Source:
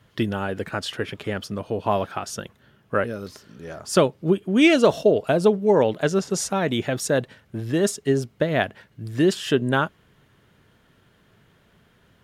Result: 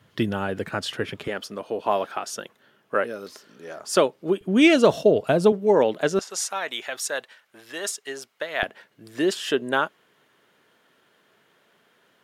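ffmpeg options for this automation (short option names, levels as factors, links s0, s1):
-af "asetnsamples=n=441:p=0,asendcmd='1.28 highpass f 320;4.41 highpass f 79;5.52 highpass f 230;6.19 highpass f 900;8.63 highpass f 360',highpass=92"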